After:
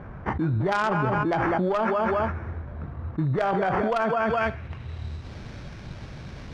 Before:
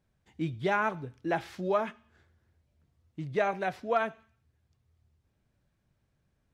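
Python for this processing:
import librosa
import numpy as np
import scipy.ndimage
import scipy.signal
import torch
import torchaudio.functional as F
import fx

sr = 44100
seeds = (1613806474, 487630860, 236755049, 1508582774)

y = fx.sample_hold(x, sr, seeds[0], rate_hz=3900.0, jitter_pct=0)
y = fx.echo_feedback(y, sr, ms=206, feedback_pct=25, wet_db=-16)
y = fx.filter_sweep_lowpass(y, sr, from_hz=1300.0, to_hz=4600.0, start_s=4.19, end_s=5.12, q=1.5)
y = fx.cheby_harmonics(y, sr, harmonics=(3, 6, 8), levels_db=(-17, -22, -26), full_scale_db=-13.5)
y = fx.env_flatten(y, sr, amount_pct=100)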